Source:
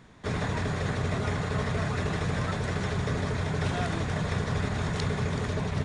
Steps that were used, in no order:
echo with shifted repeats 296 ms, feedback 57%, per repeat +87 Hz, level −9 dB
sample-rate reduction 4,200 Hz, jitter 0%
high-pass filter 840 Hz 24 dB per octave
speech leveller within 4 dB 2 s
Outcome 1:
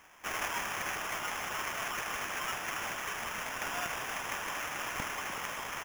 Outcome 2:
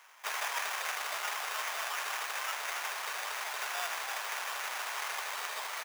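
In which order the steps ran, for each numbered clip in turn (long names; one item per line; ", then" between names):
speech leveller, then high-pass filter, then sample-rate reduction, then echo with shifted repeats
speech leveller, then echo with shifted repeats, then sample-rate reduction, then high-pass filter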